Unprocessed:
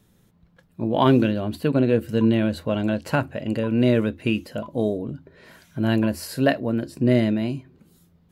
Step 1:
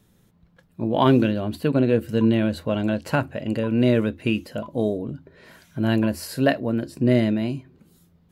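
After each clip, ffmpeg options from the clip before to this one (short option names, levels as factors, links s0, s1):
-af anull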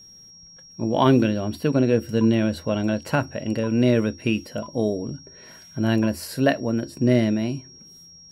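-af "aeval=exprs='val(0)+0.00562*sin(2*PI*5600*n/s)':c=same"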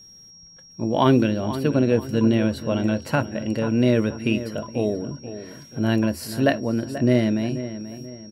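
-filter_complex "[0:a]asplit=2[s0][s1];[s1]adelay=484,lowpass=f=2500:p=1,volume=0.251,asplit=2[s2][s3];[s3]adelay=484,lowpass=f=2500:p=1,volume=0.39,asplit=2[s4][s5];[s5]adelay=484,lowpass=f=2500:p=1,volume=0.39,asplit=2[s6][s7];[s7]adelay=484,lowpass=f=2500:p=1,volume=0.39[s8];[s0][s2][s4][s6][s8]amix=inputs=5:normalize=0"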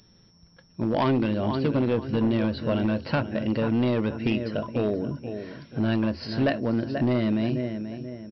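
-af "acompressor=threshold=0.0891:ratio=2.5,aresample=11025,volume=8.41,asoftclip=hard,volume=0.119,aresample=44100,volume=1.12"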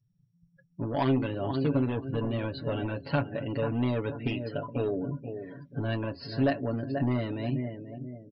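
-af "aecho=1:1:7.1:0.79,afftdn=nr=30:nf=-42,volume=0.501"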